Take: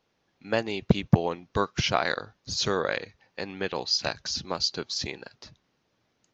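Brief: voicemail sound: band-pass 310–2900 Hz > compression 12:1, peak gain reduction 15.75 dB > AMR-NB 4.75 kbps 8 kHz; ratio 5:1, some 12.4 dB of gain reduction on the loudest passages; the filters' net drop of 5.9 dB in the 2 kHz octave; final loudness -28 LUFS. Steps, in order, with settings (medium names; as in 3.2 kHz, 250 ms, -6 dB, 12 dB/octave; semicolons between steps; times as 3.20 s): peaking EQ 2 kHz -7 dB; compression 5:1, threshold -27 dBFS; band-pass 310–2900 Hz; compression 12:1, threshold -41 dBFS; trim +23.5 dB; AMR-NB 4.75 kbps 8 kHz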